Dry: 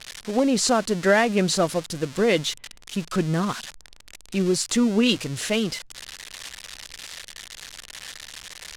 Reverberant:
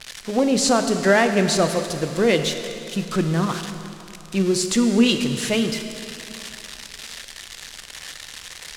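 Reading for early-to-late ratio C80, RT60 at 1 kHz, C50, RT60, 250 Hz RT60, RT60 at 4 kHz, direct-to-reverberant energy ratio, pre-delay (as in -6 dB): 8.5 dB, 2.8 s, 7.5 dB, 2.9 s, 2.9 s, 2.7 s, 6.5 dB, 6 ms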